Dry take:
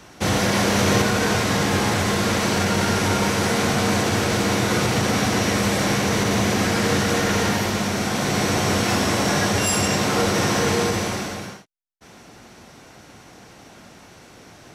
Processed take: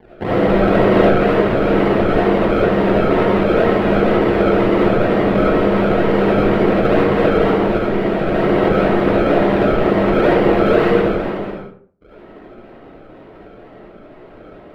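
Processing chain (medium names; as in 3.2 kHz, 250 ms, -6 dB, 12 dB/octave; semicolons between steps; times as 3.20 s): peaking EQ 400 Hz +13 dB 1 oct; decimation with a swept rate 33×, swing 100% 2.1 Hz; distance through air 490 m; algorithmic reverb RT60 0.52 s, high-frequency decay 0.55×, pre-delay 30 ms, DRR -7 dB; trim -5 dB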